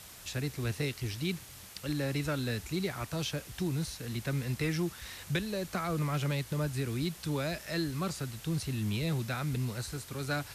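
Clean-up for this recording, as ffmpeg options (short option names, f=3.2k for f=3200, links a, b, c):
-af "afwtdn=0.0035"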